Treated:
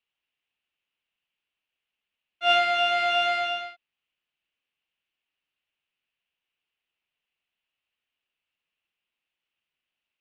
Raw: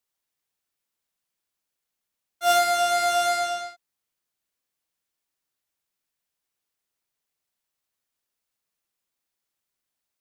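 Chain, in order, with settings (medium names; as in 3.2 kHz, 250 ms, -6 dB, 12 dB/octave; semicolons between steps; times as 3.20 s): resonant low-pass 2.8 kHz, resonance Q 5.2; trim -3.5 dB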